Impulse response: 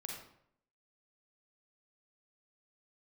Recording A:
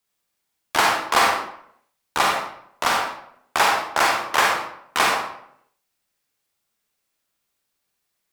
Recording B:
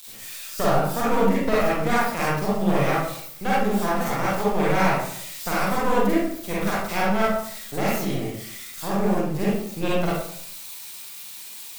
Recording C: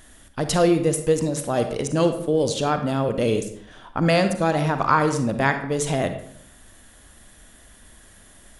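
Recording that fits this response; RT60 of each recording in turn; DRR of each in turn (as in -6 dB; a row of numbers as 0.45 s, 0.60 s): A; 0.70 s, 0.70 s, 0.70 s; -1.0 dB, -8.0 dB, 7.5 dB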